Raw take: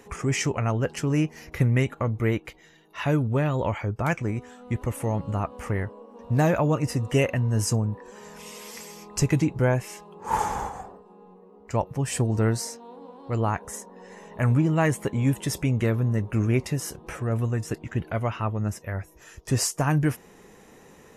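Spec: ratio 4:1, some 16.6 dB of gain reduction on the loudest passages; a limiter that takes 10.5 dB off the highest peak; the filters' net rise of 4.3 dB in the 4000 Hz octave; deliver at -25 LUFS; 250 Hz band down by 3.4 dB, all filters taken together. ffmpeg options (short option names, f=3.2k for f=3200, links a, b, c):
-af "equalizer=f=250:t=o:g=-5,equalizer=f=4k:t=o:g=6.5,acompressor=threshold=-39dB:ratio=4,volume=17.5dB,alimiter=limit=-15dB:level=0:latency=1"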